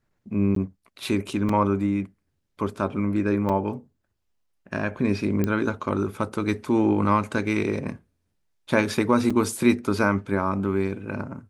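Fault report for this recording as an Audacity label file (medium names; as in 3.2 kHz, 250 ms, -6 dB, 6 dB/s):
0.550000	0.560000	dropout 13 ms
1.490000	1.490000	dropout 3.5 ms
3.490000	3.500000	dropout 5.9 ms
5.440000	5.440000	pop -12 dBFS
9.300000	9.300000	dropout 4.8 ms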